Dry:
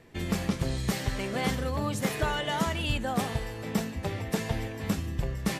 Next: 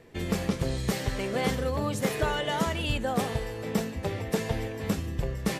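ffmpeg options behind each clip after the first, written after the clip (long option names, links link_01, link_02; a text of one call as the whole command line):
ffmpeg -i in.wav -af "equalizer=frequency=470:width=2.4:gain=5.5" out.wav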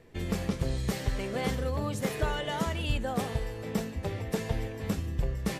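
ffmpeg -i in.wav -af "lowshelf=frequency=74:gain=9.5,volume=-4dB" out.wav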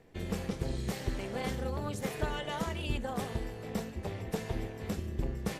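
ffmpeg -i in.wav -af "tremolo=f=290:d=0.71,volume=-1dB" out.wav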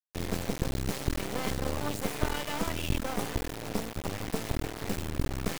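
ffmpeg -i in.wav -af "acrusher=bits=4:dc=4:mix=0:aa=0.000001,volume=6dB" out.wav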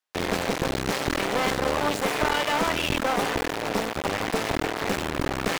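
ffmpeg -i in.wav -filter_complex "[0:a]asplit=2[link_01][link_02];[link_02]highpass=frequency=720:poles=1,volume=23dB,asoftclip=type=tanh:threshold=-10dB[link_03];[link_01][link_03]amix=inputs=2:normalize=0,lowpass=frequency=2500:poles=1,volume=-6dB" out.wav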